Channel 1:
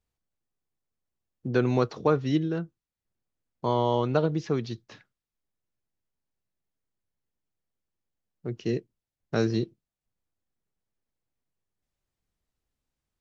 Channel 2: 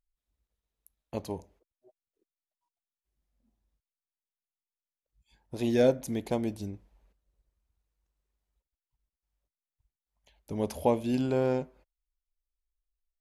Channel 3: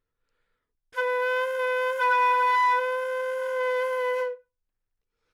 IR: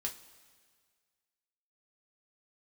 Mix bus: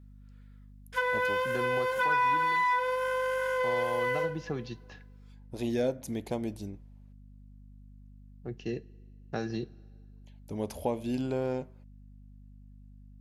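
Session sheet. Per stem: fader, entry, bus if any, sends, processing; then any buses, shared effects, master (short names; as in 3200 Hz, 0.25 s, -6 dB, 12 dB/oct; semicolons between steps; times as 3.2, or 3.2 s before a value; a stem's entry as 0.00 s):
-7.5 dB, 0.00 s, bus A, send -11 dB, small resonant body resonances 770/1700/2700 Hz, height 11 dB; hum 50 Hz, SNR 18 dB
-2.0 dB, 0.00 s, no bus, no send, dry
+2.0 dB, 0.00 s, bus A, send -4 dB, low shelf 450 Hz -11.5 dB
bus A: 0.0 dB, hum 50 Hz, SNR 31 dB; compressor, threshold -29 dBFS, peak gain reduction 11 dB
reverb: on, pre-delay 3 ms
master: compressor 2:1, threshold -28 dBFS, peak gain reduction 6 dB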